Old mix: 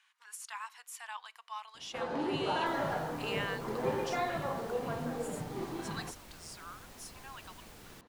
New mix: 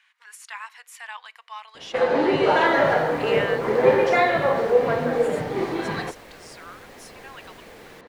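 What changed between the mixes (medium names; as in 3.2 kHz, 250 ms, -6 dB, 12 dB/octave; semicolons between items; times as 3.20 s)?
first sound +8.0 dB; master: add ten-band graphic EQ 500 Hz +10 dB, 2 kHz +10 dB, 4 kHz +3 dB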